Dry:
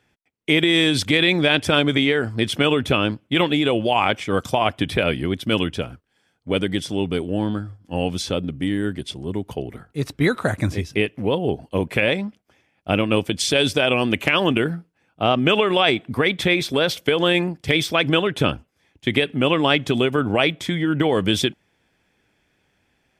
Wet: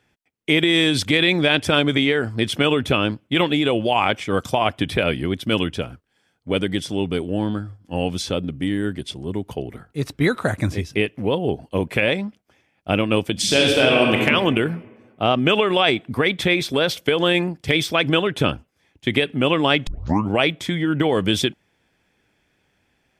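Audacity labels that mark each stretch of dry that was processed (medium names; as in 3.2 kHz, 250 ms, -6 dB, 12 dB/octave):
13.320000	14.180000	reverb throw, RT60 1.6 s, DRR -1 dB
19.870000	19.870000	tape start 0.43 s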